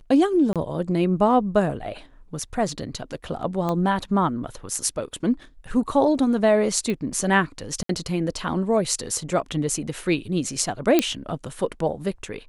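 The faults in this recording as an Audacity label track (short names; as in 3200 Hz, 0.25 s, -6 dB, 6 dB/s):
0.530000	0.560000	gap 27 ms
3.690000	3.690000	pop -14 dBFS
6.900000	6.900000	pop -16 dBFS
7.830000	7.890000	gap 63 ms
10.990000	10.990000	pop -4 dBFS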